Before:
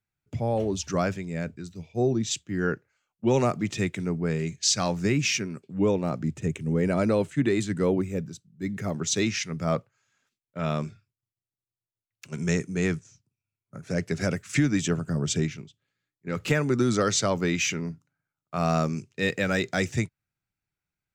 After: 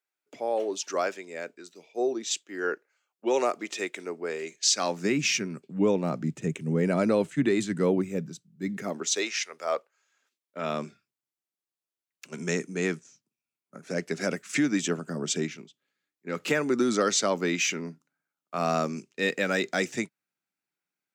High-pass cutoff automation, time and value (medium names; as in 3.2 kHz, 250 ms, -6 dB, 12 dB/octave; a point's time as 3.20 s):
high-pass 24 dB/octave
4.58 s 350 Hz
5.36 s 150 Hz
8.68 s 150 Hz
9.40 s 530 Hz
10.81 s 210 Hz